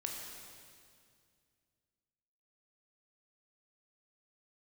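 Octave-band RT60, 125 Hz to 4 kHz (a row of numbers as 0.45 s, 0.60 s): 2.9 s, 2.7 s, 2.3 s, 2.1 s, 2.0 s, 2.1 s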